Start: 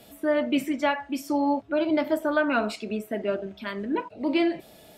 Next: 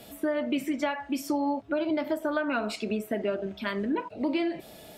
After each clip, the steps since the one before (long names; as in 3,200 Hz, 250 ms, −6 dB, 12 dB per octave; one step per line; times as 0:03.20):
downward compressor, threshold −28 dBFS, peak gain reduction 9.5 dB
level +3 dB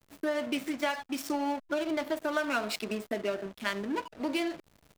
slack as between gear wheels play −34 dBFS
spectral tilt +2.5 dB per octave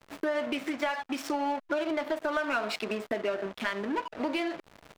downward compressor 3 to 1, threshold −40 dBFS, peak gain reduction 11.5 dB
mid-hump overdrive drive 11 dB, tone 2,000 Hz, clips at −23.5 dBFS
level +8.5 dB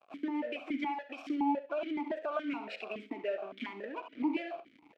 flutter between parallel walls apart 11.5 metres, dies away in 0.34 s
formant filter that steps through the vowels 7.1 Hz
level +5 dB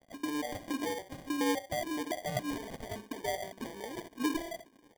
decimation without filtering 33×